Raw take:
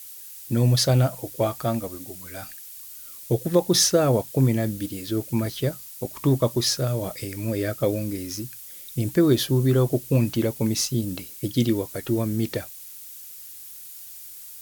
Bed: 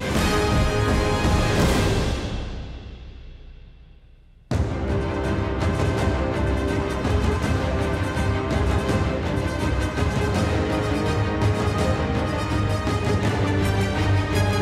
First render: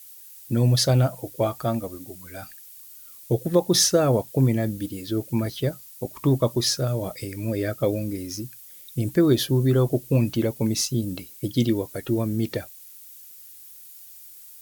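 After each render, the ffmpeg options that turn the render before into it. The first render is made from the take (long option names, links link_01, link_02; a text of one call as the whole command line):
ffmpeg -i in.wav -af "afftdn=noise_reduction=6:noise_floor=-42" out.wav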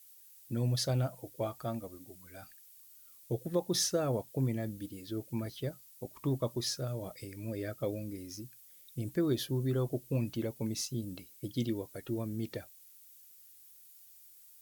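ffmpeg -i in.wav -af "volume=-12dB" out.wav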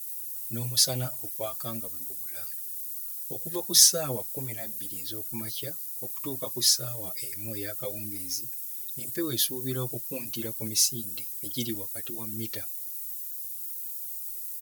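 ffmpeg -i in.wav -filter_complex "[0:a]crystalizer=i=8.5:c=0,asplit=2[link_01][link_02];[link_02]adelay=6.7,afreqshift=-1.6[link_03];[link_01][link_03]amix=inputs=2:normalize=1" out.wav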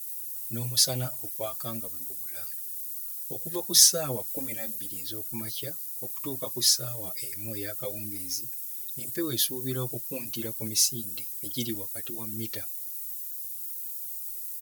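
ffmpeg -i in.wav -filter_complex "[0:a]asettb=1/sr,asplit=3[link_01][link_02][link_03];[link_01]atrim=end=4.264[link_04];[link_02]atrim=start=4.26:end=4.76,asetpts=PTS-STARTPTS,afade=type=in:duration=0.004:curve=qsin,afade=type=out:start_time=0.496:duration=0.004:curve=qsin,aecho=1:1:3.8:0.78,atrim=end_sample=22050[link_05];[link_03]atrim=start=4.756[link_06];[link_04][link_05]acrossfade=duration=0.004:curve1=hsin:curve2=qsin[link_07];[link_07][link_06]acrossfade=duration=0.004:curve1=qsin:curve2=hsin" out.wav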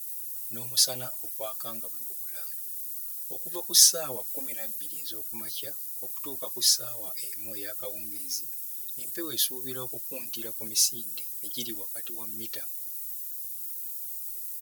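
ffmpeg -i in.wav -af "highpass=frequency=610:poles=1,equalizer=frequency=2100:width_type=o:width=0.25:gain=-5.5" out.wav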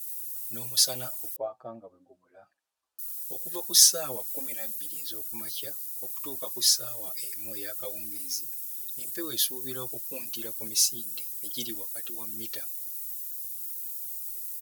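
ffmpeg -i in.wav -filter_complex "[0:a]asettb=1/sr,asplit=3[link_01][link_02][link_03];[link_01]atrim=end=1.364[link_04];[link_02]atrim=start=1.36:end=2.99,asetpts=PTS-STARTPTS,afade=type=in:duration=0.004:curve=qsin,afade=type=out:start_time=1.626:duration=0.004:curve=qsin,lowpass=frequency=760:width_type=q:width=1.7[link_05];[link_03]atrim=start=2.986[link_06];[link_04][link_05]acrossfade=duration=0.004:curve1=hsin:curve2=qsin[link_07];[link_07][link_06]acrossfade=duration=0.004:curve1=qsin:curve2=hsin" out.wav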